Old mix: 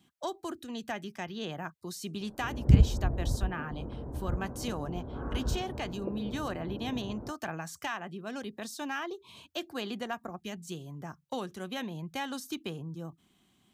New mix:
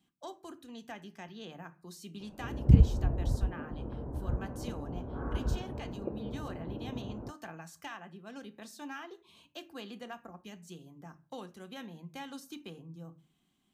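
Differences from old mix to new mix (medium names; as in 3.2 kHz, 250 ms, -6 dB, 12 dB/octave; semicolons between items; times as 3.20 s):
speech -11.0 dB; reverb: on, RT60 0.35 s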